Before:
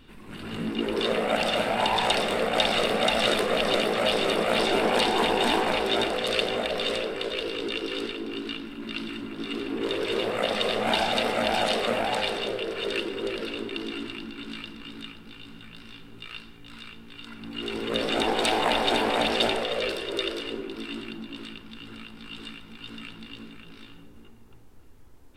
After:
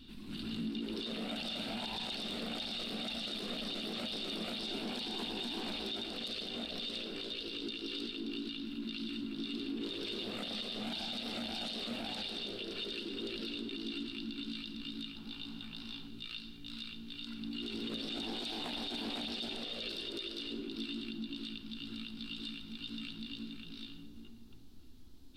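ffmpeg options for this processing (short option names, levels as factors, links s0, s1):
-filter_complex "[0:a]asettb=1/sr,asplit=3[s0][s1][s2];[s0]atrim=end=15.164[s3];[s1]atrim=start=15.16:end=16.08,asetpts=PTS-STARTPTS,afade=t=in:d=0.004:c=qsin,afade=t=out:st=0.916:d=0.004:c=qsin,equalizer=f=860:t=o:w=1.1:g=10.5[s4];[s2]atrim=start=16.076[s5];[s3][s4]acrossfade=d=0.004:c1=hsin:c2=qsin[s6];[s6][s5]acrossfade=d=0.004:c1=qsin:c2=hsin,equalizer=f=125:t=o:w=1:g=-4,equalizer=f=250:t=o:w=1:g=8,equalizer=f=500:t=o:w=1:g=-11,equalizer=f=1000:t=o:w=1:g=-7,equalizer=f=2000:t=o:w=1:g=-9,equalizer=f=4000:t=o:w=1:g=12,equalizer=f=8000:t=o:w=1:g=-4,acompressor=threshold=0.0158:ratio=2,alimiter=level_in=1.5:limit=0.0631:level=0:latency=1:release=14,volume=0.668,volume=0.708"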